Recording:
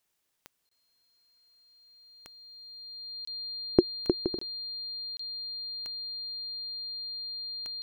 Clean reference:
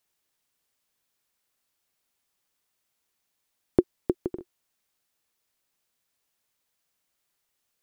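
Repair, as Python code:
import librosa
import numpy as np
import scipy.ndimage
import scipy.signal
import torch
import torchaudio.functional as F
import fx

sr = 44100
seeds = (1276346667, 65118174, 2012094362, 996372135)

y = fx.fix_declick_ar(x, sr, threshold=10.0)
y = fx.notch(y, sr, hz=4200.0, q=30.0)
y = fx.fix_interpolate(y, sr, at_s=(0.69, 3.25, 4.39, 5.17), length_ms=24.0)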